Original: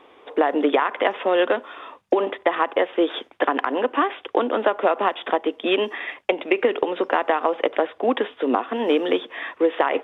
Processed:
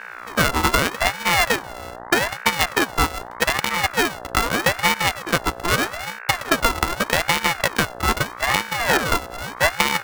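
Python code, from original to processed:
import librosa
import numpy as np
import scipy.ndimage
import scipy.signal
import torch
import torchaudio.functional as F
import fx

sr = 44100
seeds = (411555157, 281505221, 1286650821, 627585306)

y = np.r_[np.sort(x[:len(x) // 64 * 64].reshape(-1, 64), axis=1).ravel(), x[len(x) // 64 * 64:]]
y = fx.dmg_buzz(y, sr, base_hz=60.0, harmonics=19, level_db=-37.0, tilt_db=-4, odd_only=False)
y = fx.ring_lfo(y, sr, carrier_hz=1100.0, swing_pct=45, hz=0.81)
y = y * 10.0 ** (3.5 / 20.0)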